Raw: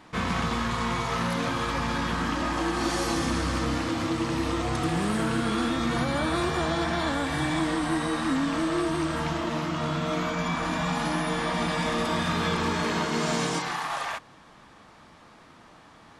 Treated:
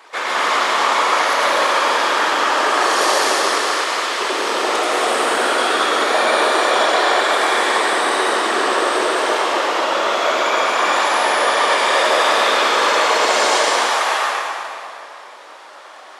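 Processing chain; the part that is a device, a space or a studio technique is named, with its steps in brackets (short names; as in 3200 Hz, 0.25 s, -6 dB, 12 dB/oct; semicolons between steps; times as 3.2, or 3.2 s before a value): 3.46–4.19 HPF 920 Hz 6 dB/oct; whispering ghost (whisperiser; HPF 480 Hz 24 dB/oct; reverb RT60 2.5 s, pre-delay 89 ms, DRR -4.5 dB); gain +8.5 dB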